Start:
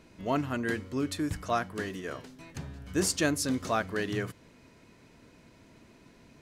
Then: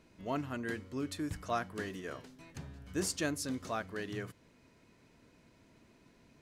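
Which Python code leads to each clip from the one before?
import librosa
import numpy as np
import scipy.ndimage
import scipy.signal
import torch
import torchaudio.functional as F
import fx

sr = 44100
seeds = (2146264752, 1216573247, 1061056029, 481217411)

y = fx.rider(x, sr, range_db=5, speed_s=2.0)
y = F.gain(torch.from_numpy(y), -7.5).numpy()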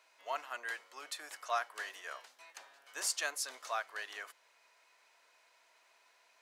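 y = fx.octave_divider(x, sr, octaves=1, level_db=1.0)
y = scipy.signal.sosfilt(scipy.signal.butter(4, 720.0, 'highpass', fs=sr, output='sos'), y)
y = F.gain(torch.from_numpy(y), 2.5).numpy()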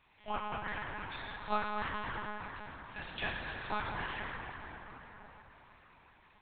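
y = fx.notch(x, sr, hz=1500.0, q=8.4)
y = fx.rev_plate(y, sr, seeds[0], rt60_s=4.6, hf_ratio=0.55, predelay_ms=0, drr_db=-2.5)
y = fx.lpc_monotone(y, sr, seeds[1], pitch_hz=210.0, order=8)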